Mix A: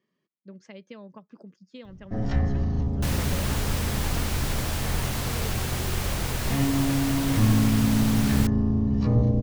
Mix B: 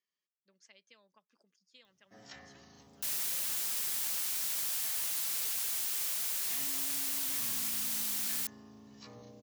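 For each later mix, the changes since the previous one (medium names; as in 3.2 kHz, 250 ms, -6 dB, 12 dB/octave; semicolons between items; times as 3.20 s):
first sound: add high-pass 100 Hz; master: add differentiator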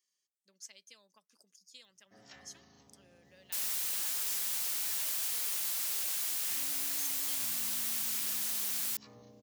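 speech: remove low-pass 2.7 kHz 12 dB/octave; first sound -4.0 dB; second sound: entry +0.50 s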